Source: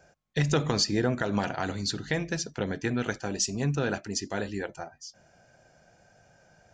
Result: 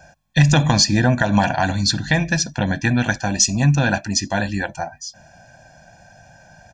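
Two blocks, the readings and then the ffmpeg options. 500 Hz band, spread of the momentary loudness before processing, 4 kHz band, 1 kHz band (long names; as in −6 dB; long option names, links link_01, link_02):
+5.5 dB, 10 LU, +11.0 dB, +12.5 dB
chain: -af "aecho=1:1:1.2:0.9,acontrast=27,volume=4dB"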